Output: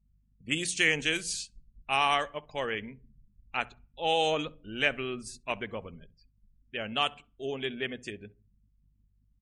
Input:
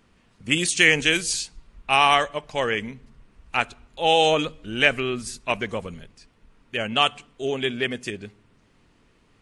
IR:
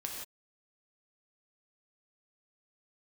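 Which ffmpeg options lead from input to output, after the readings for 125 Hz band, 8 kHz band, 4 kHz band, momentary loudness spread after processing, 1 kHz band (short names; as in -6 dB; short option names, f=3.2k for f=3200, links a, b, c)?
-9.0 dB, -8.5 dB, -8.5 dB, 16 LU, -8.5 dB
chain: -filter_complex "[0:a]bandreject=f=60:t=h:w=6,bandreject=f=120:t=h:w=6,bandreject=f=180:t=h:w=6,aeval=exprs='val(0)+0.00158*(sin(2*PI*50*n/s)+sin(2*PI*2*50*n/s)/2+sin(2*PI*3*50*n/s)/3+sin(2*PI*4*50*n/s)/4+sin(2*PI*5*50*n/s)/5)':c=same,afftdn=nr=32:nf=-45,asplit=2[a][b];[b]adelay=66,lowpass=f=900:p=1,volume=-20dB,asplit=2[c][d];[d]adelay=66,lowpass=f=900:p=1,volume=0.25[e];[c][e]amix=inputs=2:normalize=0[f];[a][f]amix=inputs=2:normalize=0,volume=-8.5dB"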